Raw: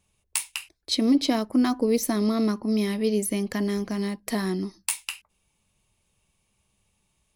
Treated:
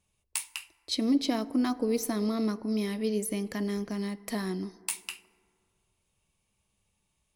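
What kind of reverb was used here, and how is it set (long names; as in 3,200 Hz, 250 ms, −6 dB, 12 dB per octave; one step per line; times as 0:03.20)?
feedback delay network reverb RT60 2.3 s, low-frequency decay 0.85×, high-frequency decay 0.35×, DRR 17 dB
level −5.5 dB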